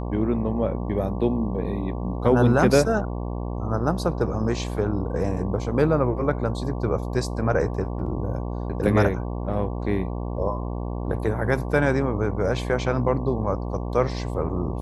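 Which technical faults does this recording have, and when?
buzz 60 Hz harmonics 19 -29 dBFS

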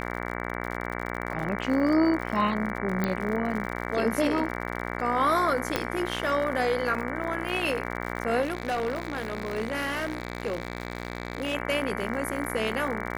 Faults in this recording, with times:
buzz 60 Hz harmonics 38 -33 dBFS
crackle 68 per s -33 dBFS
3.04 s: pop -13 dBFS
5.76 s: pop -9 dBFS
8.41–11.55 s: clipped -24 dBFS

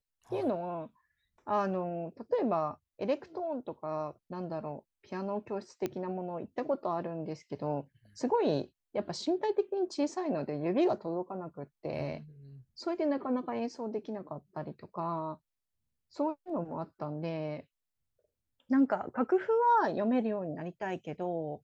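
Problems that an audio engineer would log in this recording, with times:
5.86 s: pop -20 dBFS

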